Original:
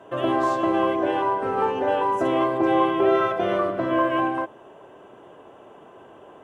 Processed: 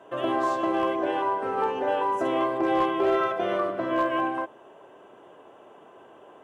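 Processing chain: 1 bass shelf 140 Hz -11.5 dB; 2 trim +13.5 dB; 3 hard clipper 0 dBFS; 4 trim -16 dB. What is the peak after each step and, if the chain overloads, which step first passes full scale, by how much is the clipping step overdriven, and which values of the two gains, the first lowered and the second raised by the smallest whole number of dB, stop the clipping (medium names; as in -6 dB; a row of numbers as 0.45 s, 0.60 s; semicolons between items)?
-8.0 dBFS, +5.5 dBFS, 0.0 dBFS, -16.0 dBFS; step 2, 5.5 dB; step 2 +7.5 dB, step 4 -10 dB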